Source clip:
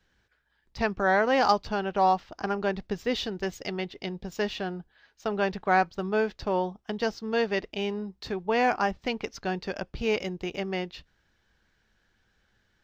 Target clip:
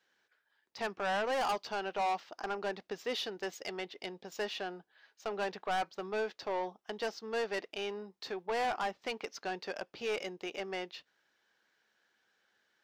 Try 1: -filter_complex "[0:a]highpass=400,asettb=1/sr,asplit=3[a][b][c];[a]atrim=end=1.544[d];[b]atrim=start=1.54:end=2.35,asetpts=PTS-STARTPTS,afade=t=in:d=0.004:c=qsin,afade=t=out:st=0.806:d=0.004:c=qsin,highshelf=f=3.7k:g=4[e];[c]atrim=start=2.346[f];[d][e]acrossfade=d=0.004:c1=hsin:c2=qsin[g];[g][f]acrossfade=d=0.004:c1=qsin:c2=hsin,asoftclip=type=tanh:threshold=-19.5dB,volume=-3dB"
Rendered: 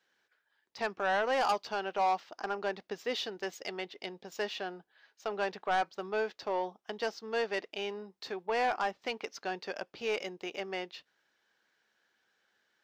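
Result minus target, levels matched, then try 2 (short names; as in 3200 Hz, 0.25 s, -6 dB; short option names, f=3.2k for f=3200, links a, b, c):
soft clip: distortion -5 dB
-filter_complex "[0:a]highpass=400,asettb=1/sr,asplit=3[a][b][c];[a]atrim=end=1.544[d];[b]atrim=start=1.54:end=2.35,asetpts=PTS-STARTPTS,afade=t=in:d=0.004:c=qsin,afade=t=out:st=0.806:d=0.004:c=qsin,highshelf=f=3.7k:g=4[e];[c]atrim=start=2.346[f];[d][e]acrossfade=d=0.004:c1=hsin:c2=qsin[g];[g][f]acrossfade=d=0.004:c1=qsin:c2=hsin,asoftclip=type=tanh:threshold=-25.5dB,volume=-3dB"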